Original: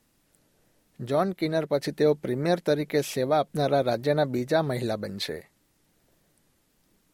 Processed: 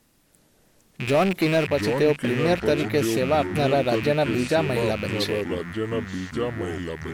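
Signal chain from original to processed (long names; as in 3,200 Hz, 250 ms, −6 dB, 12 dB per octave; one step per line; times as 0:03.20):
loose part that buzzes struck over −43 dBFS, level −25 dBFS
in parallel at −2 dB: downward compressor, threshold −31 dBFS, peak gain reduction 13.5 dB
0:01.07–0:01.67: on the sum: power curve on the samples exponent 0.7
delay with pitch and tempo change per echo 341 ms, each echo −5 semitones, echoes 2, each echo −6 dB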